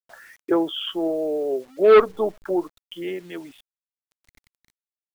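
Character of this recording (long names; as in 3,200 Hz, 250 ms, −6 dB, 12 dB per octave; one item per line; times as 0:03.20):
tremolo triangle 0.52 Hz, depth 60%
a quantiser's noise floor 10 bits, dither none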